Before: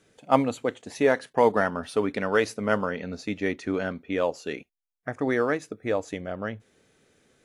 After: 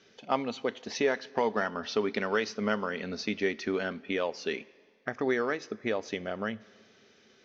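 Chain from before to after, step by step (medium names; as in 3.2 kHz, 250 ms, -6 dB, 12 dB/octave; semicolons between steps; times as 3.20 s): steep low-pass 6 kHz 72 dB/octave; tilt EQ +2.5 dB/octave; compression 2:1, threshold -33 dBFS, peak gain reduction 10.5 dB; small resonant body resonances 220/390/3000 Hz, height 9 dB, ringing for 85 ms; on a send: reverberation RT60 2.0 s, pre-delay 5 ms, DRR 21 dB; on the sum: trim +1.5 dB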